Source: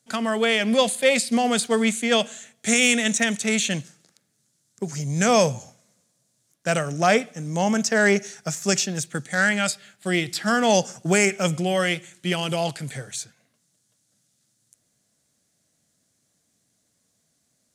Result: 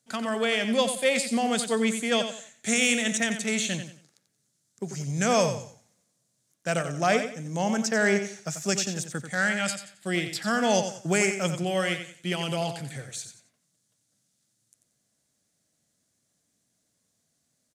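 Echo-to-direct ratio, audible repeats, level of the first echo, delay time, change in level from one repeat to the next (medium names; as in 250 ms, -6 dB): -8.5 dB, 3, -9.0 dB, 90 ms, -11.0 dB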